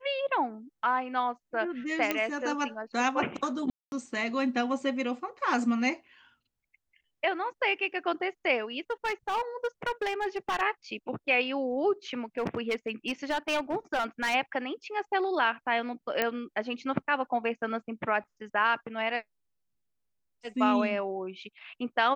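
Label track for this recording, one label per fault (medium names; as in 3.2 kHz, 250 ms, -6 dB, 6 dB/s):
2.110000	2.110000	pop -12 dBFS
3.700000	3.920000	dropout 221 ms
8.900000	10.620000	clipped -25.5 dBFS
12.380000	14.350000	clipped -24 dBFS
16.220000	16.220000	pop -12 dBFS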